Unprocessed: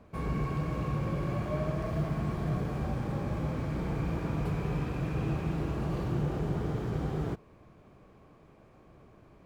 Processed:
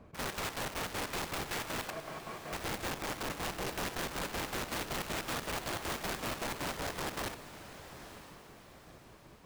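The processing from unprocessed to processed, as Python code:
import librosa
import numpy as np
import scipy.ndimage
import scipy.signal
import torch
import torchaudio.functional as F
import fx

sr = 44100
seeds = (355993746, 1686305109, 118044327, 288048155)

y = fx.bessel_highpass(x, sr, hz=650.0, order=2, at=(1.9, 2.53))
y = (np.mod(10.0 ** (31.5 / 20.0) * y + 1.0, 2.0) - 1.0) / 10.0 ** (31.5 / 20.0)
y = fx.chopper(y, sr, hz=5.3, depth_pct=65, duty_pct=60)
y = fx.echo_diffused(y, sr, ms=937, feedback_pct=42, wet_db=-12.5)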